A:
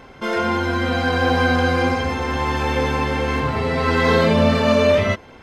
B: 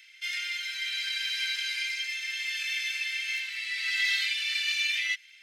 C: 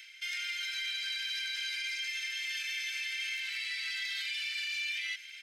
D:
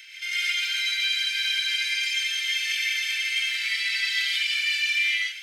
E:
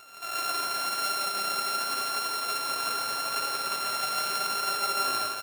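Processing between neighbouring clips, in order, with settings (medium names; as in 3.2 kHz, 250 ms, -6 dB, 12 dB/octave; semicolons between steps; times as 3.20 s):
steep high-pass 2 kHz 48 dB/octave
comb 1.3 ms, depth 34%; peak limiter -28 dBFS, peak gain reduction 11.5 dB; reverse; upward compressor, threshold -40 dBFS; reverse
gated-style reverb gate 180 ms rising, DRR -5 dB; trim +4 dB
sorted samples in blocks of 32 samples; delay 170 ms -4.5 dB; flange 0.85 Hz, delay 2.6 ms, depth 7.7 ms, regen +79%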